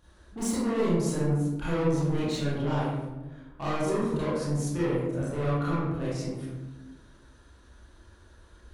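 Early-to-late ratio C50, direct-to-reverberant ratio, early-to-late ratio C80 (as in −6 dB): −3.0 dB, −10.0 dB, 1.0 dB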